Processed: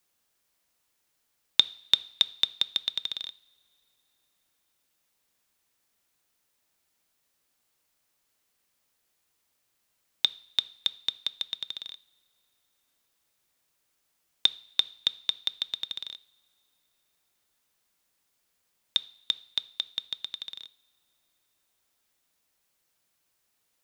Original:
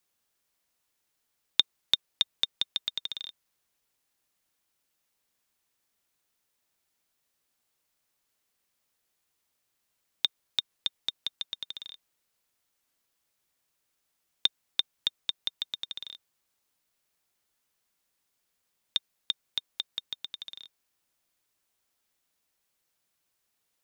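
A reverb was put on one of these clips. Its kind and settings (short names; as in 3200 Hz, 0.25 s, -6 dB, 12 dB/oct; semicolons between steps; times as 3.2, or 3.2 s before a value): two-slope reverb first 0.57 s, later 3.6 s, from -21 dB, DRR 17.5 dB; gain +3 dB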